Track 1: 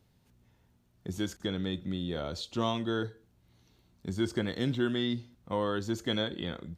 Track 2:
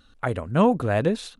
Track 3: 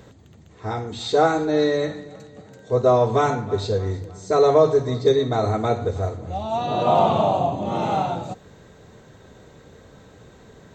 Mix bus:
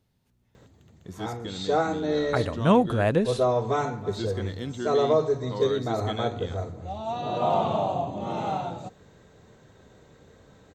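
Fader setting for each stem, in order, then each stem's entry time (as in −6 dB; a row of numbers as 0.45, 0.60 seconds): −4.0, −0.5, −6.5 decibels; 0.00, 2.10, 0.55 seconds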